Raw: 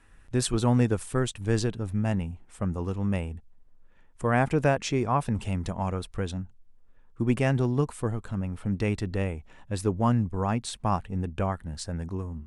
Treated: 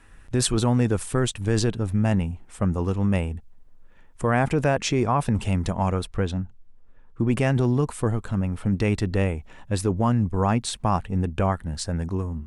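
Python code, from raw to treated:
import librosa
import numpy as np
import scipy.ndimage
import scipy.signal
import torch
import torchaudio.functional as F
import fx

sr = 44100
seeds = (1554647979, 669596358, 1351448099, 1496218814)

p1 = fx.lowpass(x, sr, hz=3600.0, slope=6, at=(6.07, 7.31))
p2 = fx.over_compress(p1, sr, threshold_db=-26.0, ratio=-0.5)
y = p1 + (p2 * librosa.db_to_amplitude(-2.0))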